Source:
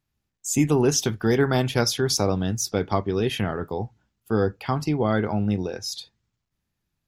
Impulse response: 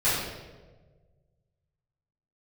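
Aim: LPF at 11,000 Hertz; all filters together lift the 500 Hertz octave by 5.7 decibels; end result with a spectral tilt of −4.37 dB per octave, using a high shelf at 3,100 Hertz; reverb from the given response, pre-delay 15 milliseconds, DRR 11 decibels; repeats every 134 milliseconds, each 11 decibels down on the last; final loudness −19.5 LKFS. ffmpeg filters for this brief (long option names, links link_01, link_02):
-filter_complex "[0:a]lowpass=11000,equalizer=frequency=500:width_type=o:gain=7,highshelf=frequency=3100:gain=6,aecho=1:1:134|268|402:0.282|0.0789|0.0221,asplit=2[link_01][link_02];[1:a]atrim=start_sample=2205,adelay=15[link_03];[link_02][link_03]afir=irnorm=-1:irlink=0,volume=-25dB[link_04];[link_01][link_04]amix=inputs=2:normalize=0"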